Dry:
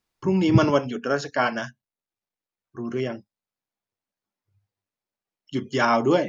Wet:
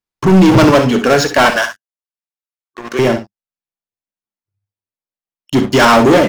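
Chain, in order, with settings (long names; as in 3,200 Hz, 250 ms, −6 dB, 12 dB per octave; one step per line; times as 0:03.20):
0:01.50–0:02.99: high-pass filter 650 Hz 12 dB per octave
leveller curve on the samples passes 5
on a send: ambience of single reflections 59 ms −11.5 dB, 69 ms −14 dB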